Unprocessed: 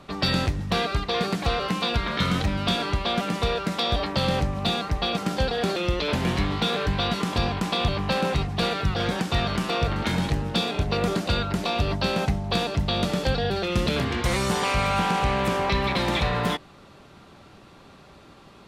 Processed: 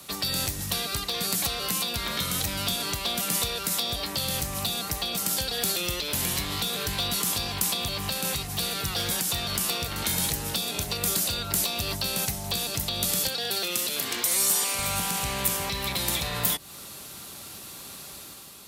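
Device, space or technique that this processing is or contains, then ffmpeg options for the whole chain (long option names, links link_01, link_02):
FM broadcast chain: -filter_complex "[0:a]highpass=40,dynaudnorm=framelen=100:gausssize=9:maxgain=5dB,acrossover=split=150|340|990[link_01][link_02][link_03][link_04];[link_01]acompressor=threshold=-29dB:ratio=4[link_05];[link_02]acompressor=threshold=-37dB:ratio=4[link_06];[link_03]acompressor=threshold=-34dB:ratio=4[link_07];[link_04]acompressor=threshold=-34dB:ratio=4[link_08];[link_05][link_06][link_07][link_08]amix=inputs=4:normalize=0,aemphasis=mode=production:type=75fm,alimiter=limit=-16.5dB:level=0:latency=1:release=212,asoftclip=type=hard:threshold=-20dB,lowpass=frequency=15000:width=0.5412,lowpass=frequency=15000:width=1.3066,aemphasis=mode=production:type=75fm,asettb=1/sr,asplit=3[link_09][link_10][link_11];[link_09]atrim=end=13.284[link_12];[link_10]atrim=start=13.28:end=14.79,asetpts=PTS-STARTPTS,afade=type=in:duration=0.004:curve=qsin,afade=type=out:start_time=1.506:duration=0.004:curve=qsin,highpass=260[link_13];[link_11]atrim=start=14.786[link_14];[link_12][link_13]acrossfade=duration=0.004:curve1=hsin:curve2=qsin[link_15];[link_15][link_14]acrossfade=duration=0.004:curve1=qsin:curve2=hsin,volume=-3.5dB"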